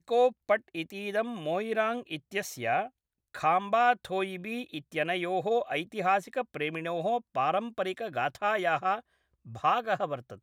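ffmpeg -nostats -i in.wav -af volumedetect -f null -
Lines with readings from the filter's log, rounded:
mean_volume: -30.3 dB
max_volume: -12.0 dB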